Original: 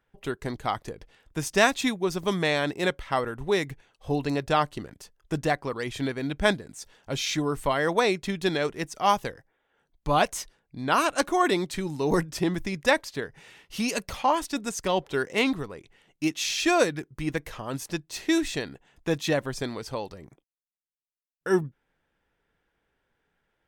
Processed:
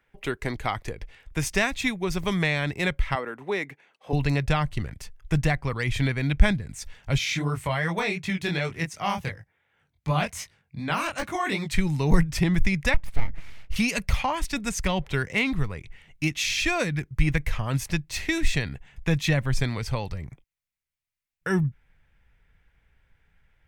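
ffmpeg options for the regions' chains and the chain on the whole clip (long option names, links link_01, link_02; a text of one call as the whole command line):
ffmpeg -i in.wav -filter_complex "[0:a]asettb=1/sr,asplit=3[link_01][link_02][link_03];[link_01]atrim=end=3.154[link_04];[link_02]atrim=start=3.15:end=4.13,asetpts=PTS-STARTPTS,afade=type=in:duration=0.004:curve=qsin,afade=type=out:start_time=0.976:duration=0.004:curve=qsin,highpass=frequency=240:width=0.5412,highpass=frequency=240:width=1.3066,highshelf=frequency=2500:gain=-9.5[link_05];[link_03]atrim=start=4.126[link_06];[link_04][link_05]acrossfade=duration=0.004:curve1=hsin:curve2=qsin[link_07];[link_07][link_06]acrossfade=duration=0.004:curve1=qsin:curve2=hsin,asettb=1/sr,asplit=3[link_08][link_09][link_10];[link_08]atrim=end=7.184[link_11];[link_09]atrim=start=7.18:end=11.72,asetpts=PTS-STARTPTS,afade=type=in:duration=0.004:curve=qsin,afade=type=out:start_time=4.536:duration=0.004:curve=qsin,highpass=frequency=82:width=0.5412,highpass=frequency=82:width=1.3066,deesser=0.55,flanger=delay=18.5:depth=5.7:speed=2.7[link_12];[link_10]atrim=start=11.716[link_13];[link_11][link_12]acrossfade=duration=0.004:curve1=hsin:curve2=qsin[link_14];[link_14][link_13]acrossfade=duration=0.004:curve1=qsin:curve2=hsin,asettb=1/sr,asplit=3[link_15][link_16][link_17];[link_15]atrim=end=12.944[link_18];[link_16]atrim=start=12.94:end=13.76,asetpts=PTS-STARTPTS,afade=type=in:duration=0.004:curve=qsin,afade=type=out:start_time=0.816:duration=0.004:curve=qsin,tiltshelf=frequency=970:gain=7,acompressor=threshold=-34dB:ratio=2:attack=3.2:release=140:knee=1:detection=peak,aeval=exprs='abs(val(0))':channel_layout=same[link_19];[link_17]atrim=start=13.756[link_20];[link_18][link_19]acrossfade=duration=0.004:curve1=hsin:curve2=qsin[link_21];[link_21][link_20]acrossfade=duration=0.004:curve1=qsin:curve2=hsin,equalizer=frequency=2200:width=2.2:gain=9,acrossover=split=250[link_22][link_23];[link_23]acompressor=threshold=-27dB:ratio=2.5[link_24];[link_22][link_24]amix=inputs=2:normalize=0,asubboost=boost=8.5:cutoff=110,volume=2.5dB" out.wav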